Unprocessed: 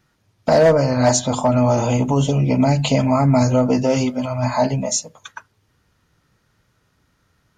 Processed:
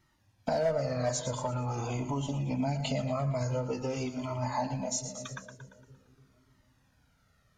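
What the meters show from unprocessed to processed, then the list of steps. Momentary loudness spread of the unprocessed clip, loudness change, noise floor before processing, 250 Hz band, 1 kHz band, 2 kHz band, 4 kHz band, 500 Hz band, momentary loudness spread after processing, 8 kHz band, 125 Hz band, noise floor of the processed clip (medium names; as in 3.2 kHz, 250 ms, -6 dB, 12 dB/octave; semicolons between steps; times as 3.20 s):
8 LU, -15.5 dB, -65 dBFS, -17.0 dB, -14.0 dB, -14.0 dB, -13.5 dB, -15.0 dB, 10 LU, -13.0 dB, -14.0 dB, -69 dBFS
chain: two-band feedback delay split 460 Hz, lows 293 ms, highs 115 ms, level -12.5 dB; compression 2.5:1, threshold -27 dBFS, peak gain reduction 12 dB; Shepard-style flanger falling 0.46 Hz; trim -1.5 dB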